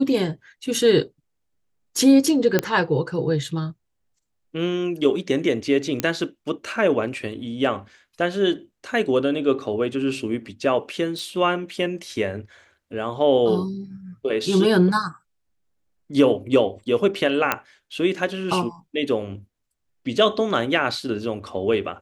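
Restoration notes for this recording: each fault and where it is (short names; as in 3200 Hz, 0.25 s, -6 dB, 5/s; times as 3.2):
2.59 pop -5 dBFS
6 pop -7 dBFS
11.19 pop
17.52 pop -5 dBFS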